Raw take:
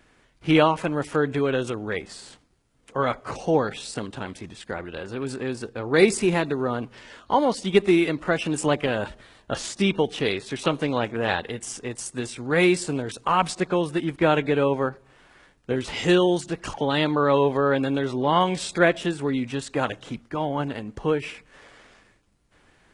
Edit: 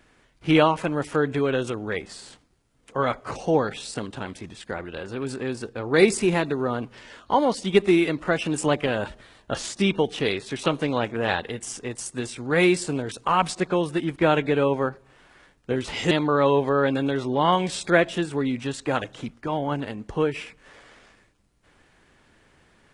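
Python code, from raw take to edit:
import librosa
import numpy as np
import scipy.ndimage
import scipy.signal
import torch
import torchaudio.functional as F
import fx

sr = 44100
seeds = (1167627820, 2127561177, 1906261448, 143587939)

y = fx.edit(x, sr, fx.cut(start_s=16.11, length_s=0.88), tone=tone)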